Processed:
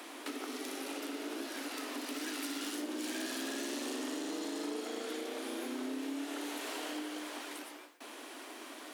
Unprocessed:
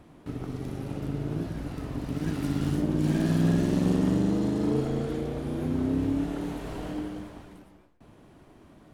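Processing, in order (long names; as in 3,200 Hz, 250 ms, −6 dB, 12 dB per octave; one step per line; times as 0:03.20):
Butterworth high-pass 250 Hz 72 dB per octave
tilt shelving filter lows −8.5 dB, about 1,200 Hz
downward compressor 4 to 1, threshold −51 dBFS, peak gain reduction 17 dB
level +11.5 dB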